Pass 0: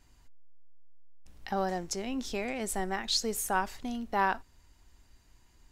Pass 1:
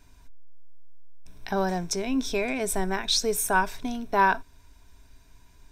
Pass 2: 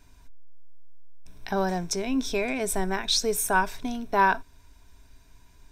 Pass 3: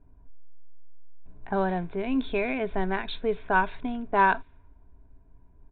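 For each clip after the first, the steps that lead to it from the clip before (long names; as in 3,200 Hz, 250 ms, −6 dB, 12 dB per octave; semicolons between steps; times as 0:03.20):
EQ curve with evenly spaced ripples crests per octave 1.6, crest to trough 9 dB; level +5 dB
no processing that can be heard
downsampling to 8,000 Hz; low-pass that shuts in the quiet parts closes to 610 Hz, open at −19 dBFS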